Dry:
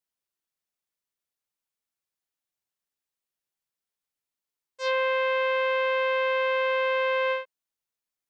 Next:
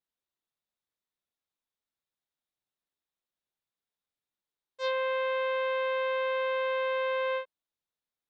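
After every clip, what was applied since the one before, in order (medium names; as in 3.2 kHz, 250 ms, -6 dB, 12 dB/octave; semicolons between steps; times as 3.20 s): treble shelf 2.7 kHz -11 dB; peak limiter -24 dBFS, peak gain reduction 4 dB; peaking EQ 3.7 kHz +8.5 dB 0.36 oct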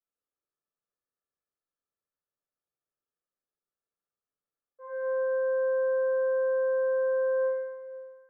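rippled Chebyshev low-pass 1.8 kHz, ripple 9 dB; reverberation RT60 1.9 s, pre-delay 8 ms, DRR -6.5 dB; trim -6.5 dB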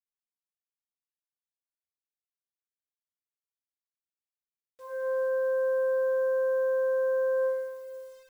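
bit crusher 10-bit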